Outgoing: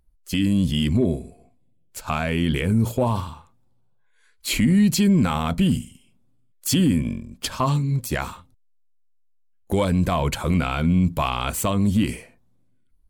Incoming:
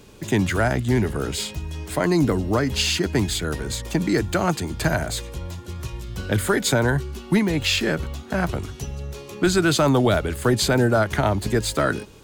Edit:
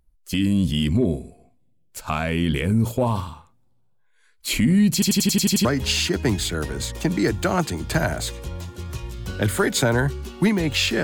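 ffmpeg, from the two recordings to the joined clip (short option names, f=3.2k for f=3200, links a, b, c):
-filter_complex "[0:a]apad=whole_dur=11.03,atrim=end=11.03,asplit=8[a][b][c][d][e][f][g][h];[a]atrim=end=5.022[i];[b]atrim=start=4.928:end=5.022[j];[c]atrim=start=4.928:end=5.022[k];[d]atrim=start=4.928:end=5.022[l];[e]atrim=start=4.928:end=5.022[m];[f]atrim=start=4.928:end=5.022[n];[g]atrim=start=4.928:end=5.022[o];[h]atrim=start=4.928:end=5.022[p];[1:a]atrim=start=2.548:end=7.93[q];[i][j]acrossfade=d=0.004:c1=hsin:c2=hsin[r];[r][k]acrossfade=d=0.004:c1=hsin:c2=hsin[s];[s][l]acrossfade=d=0.004:c1=hsin:c2=hsin[t];[t][m]acrossfade=d=0.004:c1=hsin:c2=hsin[u];[u][n]acrossfade=d=0.004:c1=hsin:c2=hsin[v];[v][o]acrossfade=d=0.004:c1=hsin:c2=hsin[w];[w][p]acrossfade=d=0.004:c1=hsin:c2=hsin[x];[x][q]acrossfade=d=0.004:c1=hsin:c2=hsin"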